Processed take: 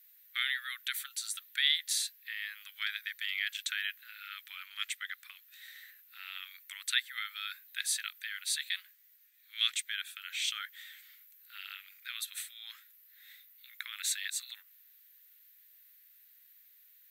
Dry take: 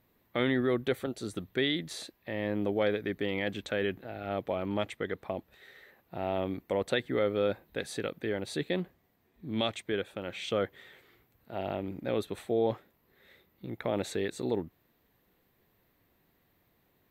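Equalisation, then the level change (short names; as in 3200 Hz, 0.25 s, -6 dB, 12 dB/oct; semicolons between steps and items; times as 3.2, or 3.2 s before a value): steep high-pass 1400 Hz 48 dB/oct; tilt +3 dB/oct; high shelf 4600 Hz +7 dB; -1.5 dB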